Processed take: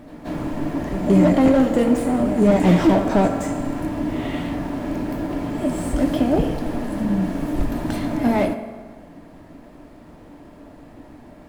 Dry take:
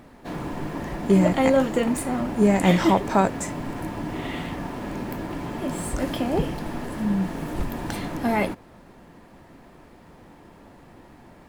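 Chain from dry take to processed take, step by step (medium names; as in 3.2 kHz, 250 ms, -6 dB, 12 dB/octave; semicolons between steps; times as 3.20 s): bass shelf 84 Hz +7 dB; small resonant body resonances 290/600 Hz, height 11 dB, ringing for 60 ms; pre-echo 177 ms -14.5 dB; on a send at -8 dB: reverberation RT60 1.6 s, pre-delay 3 ms; on the sum: slew-rate limiter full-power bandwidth 120 Hz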